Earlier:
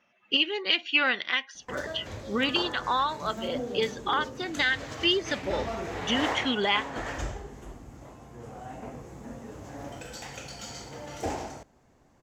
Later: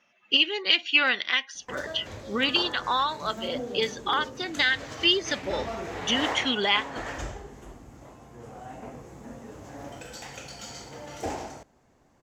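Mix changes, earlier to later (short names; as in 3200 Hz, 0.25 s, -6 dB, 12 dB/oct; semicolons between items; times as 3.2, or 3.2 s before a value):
speech: add high shelf 3400 Hz +8 dB; master: add low shelf 170 Hz -3 dB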